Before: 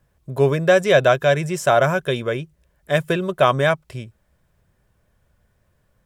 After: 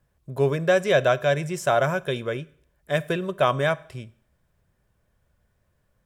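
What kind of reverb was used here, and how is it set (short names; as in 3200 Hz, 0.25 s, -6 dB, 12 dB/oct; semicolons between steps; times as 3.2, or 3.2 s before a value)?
Schroeder reverb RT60 0.58 s, combs from 28 ms, DRR 19.5 dB; gain -5 dB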